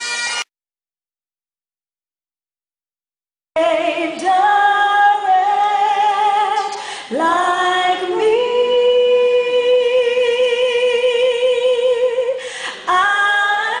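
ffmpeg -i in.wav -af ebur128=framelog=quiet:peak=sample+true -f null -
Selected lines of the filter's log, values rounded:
Integrated loudness:
  I:         -15.2 LUFS
  Threshold: -25.3 LUFS
Loudness range:
  LRA:         9.3 LU
  Threshold: -35.8 LUFS
  LRA low:   -23.6 LUFS
  LRA high:  -14.4 LUFS
Sample peak:
  Peak:       -3.4 dBFS
True peak:
  Peak:       -3.4 dBFS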